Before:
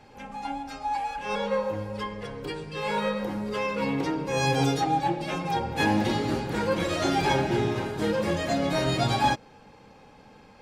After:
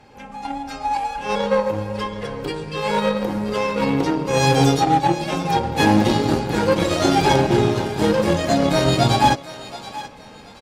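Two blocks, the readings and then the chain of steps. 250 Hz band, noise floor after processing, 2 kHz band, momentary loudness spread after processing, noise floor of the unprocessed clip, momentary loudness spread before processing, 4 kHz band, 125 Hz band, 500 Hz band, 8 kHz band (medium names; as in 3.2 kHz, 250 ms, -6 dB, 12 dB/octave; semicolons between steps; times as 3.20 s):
+8.5 dB, -42 dBFS, +5.5 dB, 14 LU, -53 dBFS, 11 LU, +7.5 dB, +8.5 dB, +8.0 dB, +9.0 dB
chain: dynamic bell 1.9 kHz, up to -5 dB, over -42 dBFS, Q 1.1; echo from a far wall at 88 m, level -28 dB; in parallel at -2.5 dB: compression, threshold -41 dBFS, peak gain reduction 20 dB; on the sum: Chebyshev shaper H 3 -12 dB, 5 -14 dB, 7 -19 dB, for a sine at -11 dBFS; on a send: thinning echo 729 ms, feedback 31%, high-pass 760 Hz, level -13.5 dB; on the sum: level rider gain up to 6 dB; trim +5 dB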